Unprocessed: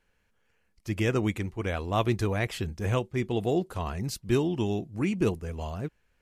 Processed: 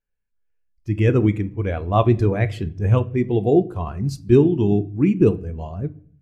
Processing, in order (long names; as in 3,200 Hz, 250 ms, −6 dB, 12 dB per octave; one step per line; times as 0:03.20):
rectangular room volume 240 cubic metres, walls mixed, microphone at 0.32 metres
every bin expanded away from the loudest bin 1.5 to 1
level +8.5 dB